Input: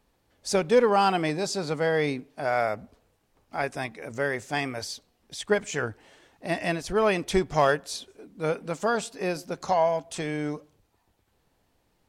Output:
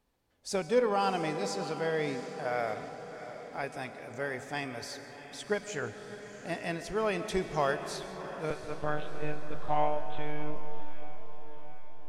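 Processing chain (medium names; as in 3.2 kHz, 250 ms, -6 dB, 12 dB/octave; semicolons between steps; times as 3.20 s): 8.50–10.56 s: monotone LPC vocoder at 8 kHz 150 Hz; feedback comb 250 Hz, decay 0.97 s, mix 60%; echo that smears into a reverb 690 ms, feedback 54%, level -12 dB; algorithmic reverb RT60 2.6 s, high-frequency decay 0.35×, pre-delay 100 ms, DRR 11.5 dB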